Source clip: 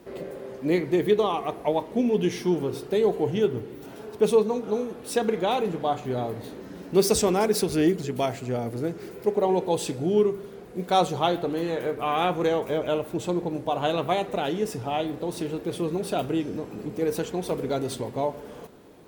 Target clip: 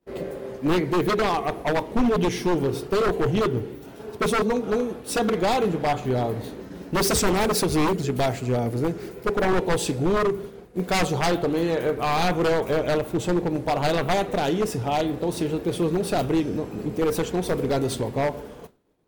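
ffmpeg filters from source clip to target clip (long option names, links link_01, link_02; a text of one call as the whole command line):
ffmpeg -i in.wav -af "agate=range=-33dB:threshold=-36dB:ratio=3:detection=peak,aeval=exprs='0.0944*(abs(mod(val(0)/0.0944+3,4)-2)-1)':channel_layout=same,lowshelf=frequency=78:gain=9.5,volume=4dB" out.wav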